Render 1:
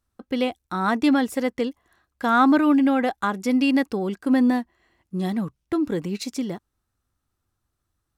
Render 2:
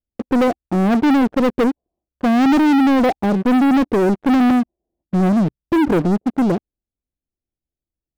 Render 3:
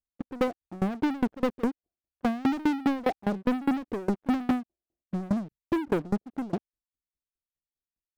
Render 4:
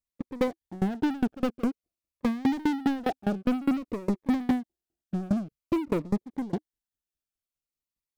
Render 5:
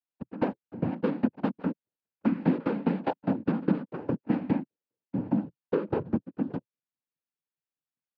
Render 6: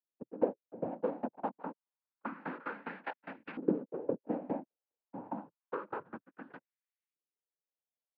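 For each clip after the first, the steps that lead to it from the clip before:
steep low-pass 690 Hz 36 dB/oct; bell 100 Hz -9 dB 0.77 oct; sample leveller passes 5
dB-ramp tremolo decaying 4.9 Hz, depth 25 dB; gain -6 dB
cascading phaser falling 0.51 Hz; gain +1 dB
noise vocoder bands 8; air absorption 360 m
LFO band-pass saw up 0.28 Hz 390–2300 Hz; gain +2 dB

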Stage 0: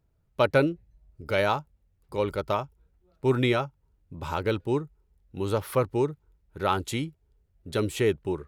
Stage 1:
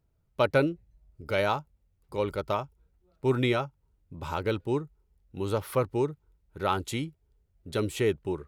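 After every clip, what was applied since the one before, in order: notch 1700 Hz, Q 25; gain -2 dB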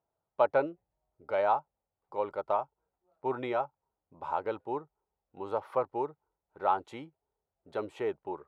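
band-pass 800 Hz, Q 2.4; gain +4.5 dB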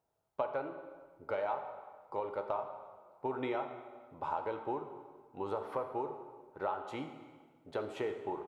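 compressor, threshold -36 dBFS, peak gain reduction 15.5 dB; echo 85 ms -20.5 dB; plate-style reverb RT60 1.6 s, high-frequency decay 0.8×, DRR 5.5 dB; gain +2.5 dB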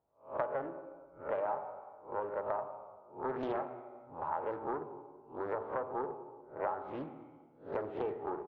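spectral swells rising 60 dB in 0.34 s; LPF 1200 Hz 12 dB/oct; Doppler distortion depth 0.56 ms

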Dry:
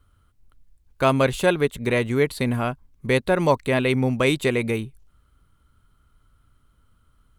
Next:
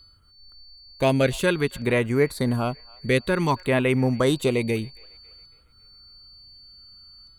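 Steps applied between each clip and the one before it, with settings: whine 4500 Hz -46 dBFS; LFO notch saw down 0.55 Hz 440–6100 Hz; band-limited delay 0.276 s, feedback 48%, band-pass 1400 Hz, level -23.5 dB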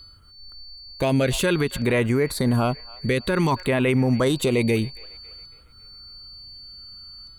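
limiter -18 dBFS, peak gain reduction 10 dB; gain +6.5 dB

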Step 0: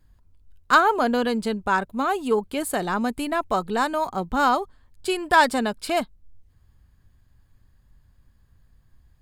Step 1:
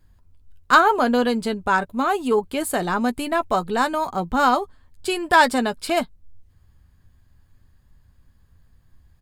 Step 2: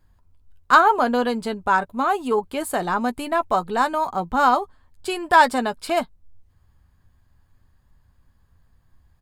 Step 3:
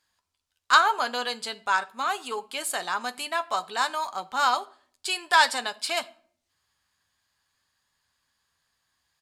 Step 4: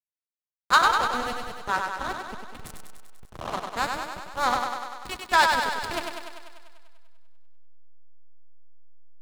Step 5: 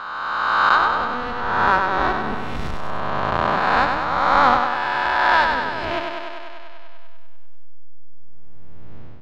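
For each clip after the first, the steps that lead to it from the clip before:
doubler 12 ms -11 dB; gain +2 dB
bell 930 Hz +5.5 dB 1.4 oct; gain -3.5 dB
band-pass 5200 Hz, Q 0.81; on a send at -15 dB: reverb RT60 0.55 s, pre-delay 5 ms; on the sum: gain +6.5 dB
spectral repair 2.76–3.49, 320–7000 Hz both; backlash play -17.5 dBFS; on a send: thinning echo 98 ms, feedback 68%, high-pass 170 Hz, level -4.5 dB
spectral swells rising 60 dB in 2.17 s; AGC gain up to 16 dB; air absorption 250 m

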